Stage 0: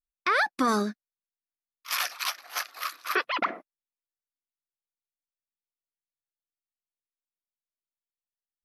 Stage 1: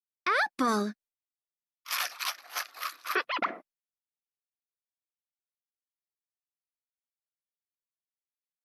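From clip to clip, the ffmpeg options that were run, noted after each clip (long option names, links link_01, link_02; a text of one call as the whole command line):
ffmpeg -i in.wav -af "agate=range=-33dB:threshold=-50dB:ratio=3:detection=peak,volume=-2.5dB" out.wav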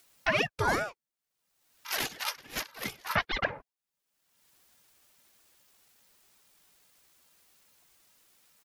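ffmpeg -i in.wav -af "aecho=1:1:2.7:0.83,acompressor=mode=upward:threshold=-36dB:ratio=2.5,aeval=exprs='val(0)*sin(2*PI*610*n/s+610*0.75/2.4*sin(2*PI*2.4*n/s))':channel_layout=same" out.wav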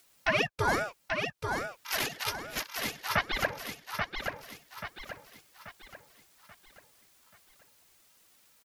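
ffmpeg -i in.wav -af "aecho=1:1:834|1668|2502|3336|4170:0.562|0.236|0.0992|0.0417|0.0175" out.wav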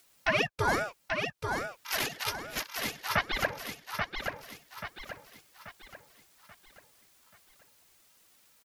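ffmpeg -i in.wav -af anull out.wav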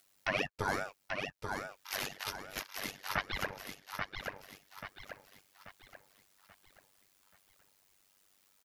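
ffmpeg -i in.wav -af "tremolo=f=97:d=0.857,volume=-2.5dB" out.wav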